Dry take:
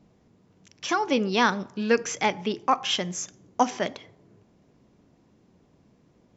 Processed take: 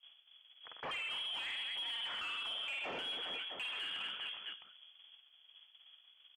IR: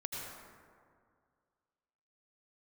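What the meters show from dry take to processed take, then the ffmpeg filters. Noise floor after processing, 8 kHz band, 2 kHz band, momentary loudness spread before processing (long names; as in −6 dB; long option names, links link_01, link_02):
−67 dBFS, can't be measured, −10.5 dB, 9 LU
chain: -filter_complex "[0:a]asoftclip=type=tanh:threshold=-25dB,agate=range=-19dB:threshold=-58dB:ratio=16:detection=peak,aecho=1:1:50|125|237.5|406.2|659.4:0.631|0.398|0.251|0.158|0.1,lowpass=frequency=3000:width_type=q:width=0.5098,lowpass=frequency=3000:width_type=q:width=0.6013,lowpass=frequency=3000:width_type=q:width=0.9,lowpass=frequency=3000:width_type=q:width=2.563,afreqshift=-3500,acompressor=threshold=-35dB:ratio=8,asplit=2[link_01][link_02];[link_02]highpass=frequency=720:poles=1,volume=13dB,asoftclip=type=tanh:threshold=-24.5dB[link_03];[link_01][link_03]amix=inputs=2:normalize=0,lowpass=frequency=2500:poles=1,volume=-6dB,alimiter=level_in=10.5dB:limit=-24dB:level=0:latency=1:release=32,volume=-10.5dB"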